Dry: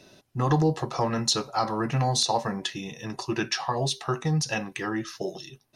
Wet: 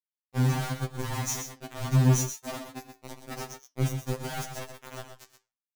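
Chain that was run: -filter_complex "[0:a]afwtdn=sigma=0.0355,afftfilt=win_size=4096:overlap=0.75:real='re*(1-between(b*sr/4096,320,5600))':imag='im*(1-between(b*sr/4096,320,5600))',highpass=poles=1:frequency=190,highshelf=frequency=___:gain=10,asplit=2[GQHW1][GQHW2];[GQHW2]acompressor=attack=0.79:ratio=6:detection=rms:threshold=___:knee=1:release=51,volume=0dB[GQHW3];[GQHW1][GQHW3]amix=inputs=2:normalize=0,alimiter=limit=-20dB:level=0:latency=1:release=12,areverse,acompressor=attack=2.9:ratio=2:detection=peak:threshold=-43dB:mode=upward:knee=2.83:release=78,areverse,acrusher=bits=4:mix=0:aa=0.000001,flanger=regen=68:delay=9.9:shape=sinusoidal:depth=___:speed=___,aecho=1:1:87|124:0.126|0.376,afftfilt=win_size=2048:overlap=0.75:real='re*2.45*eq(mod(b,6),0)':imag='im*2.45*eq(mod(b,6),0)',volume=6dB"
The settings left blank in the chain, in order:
2800, -43dB, 8.3, 0.85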